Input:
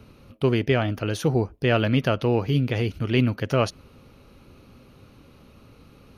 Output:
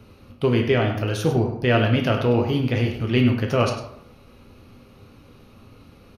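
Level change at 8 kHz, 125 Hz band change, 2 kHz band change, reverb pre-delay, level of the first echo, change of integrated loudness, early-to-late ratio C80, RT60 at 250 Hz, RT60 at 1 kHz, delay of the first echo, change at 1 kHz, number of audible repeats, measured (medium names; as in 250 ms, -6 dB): +1.0 dB, +2.0 dB, +2.5 dB, 7 ms, -11.0 dB, +2.0 dB, 7.5 dB, 0.70 s, 0.75 s, 100 ms, +2.5 dB, 1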